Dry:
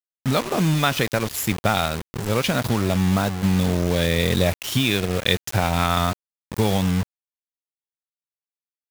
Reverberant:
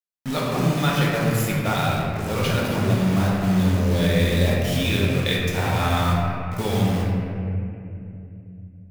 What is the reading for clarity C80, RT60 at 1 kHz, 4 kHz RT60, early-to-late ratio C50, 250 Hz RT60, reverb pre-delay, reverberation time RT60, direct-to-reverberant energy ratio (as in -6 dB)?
0.5 dB, 2.3 s, 1.7 s, -1.5 dB, 4.0 s, 3 ms, 2.7 s, -5.0 dB